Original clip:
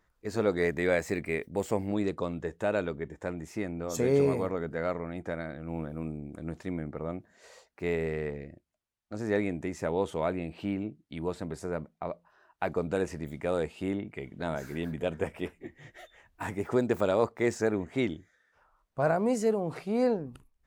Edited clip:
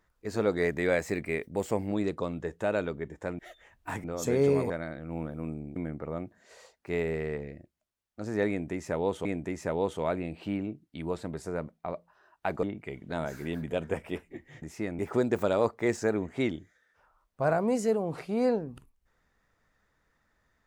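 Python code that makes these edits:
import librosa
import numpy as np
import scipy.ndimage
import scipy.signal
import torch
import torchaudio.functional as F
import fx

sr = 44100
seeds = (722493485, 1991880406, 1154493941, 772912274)

y = fx.edit(x, sr, fx.swap(start_s=3.39, length_s=0.37, other_s=15.92, other_length_s=0.65),
    fx.cut(start_s=4.42, length_s=0.86),
    fx.cut(start_s=6.34, length_s=0.35),
    fx.repeat(start_s=9.42, length_s=0.76, count=2),
    fx.cut(start_s=12.8, length_s=1.13), tone=tone)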